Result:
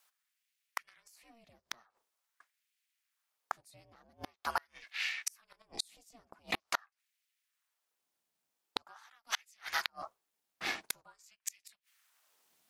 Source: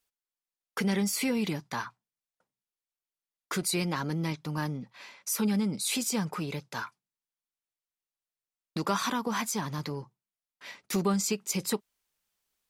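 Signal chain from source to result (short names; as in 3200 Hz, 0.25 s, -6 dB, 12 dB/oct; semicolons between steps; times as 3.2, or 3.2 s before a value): LFO high-pass sine 0.45 Hz 410–2300 Hz; ring modulator 230 Hz; flipped gate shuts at -28 dBFS, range -39 dB; gain +11 dB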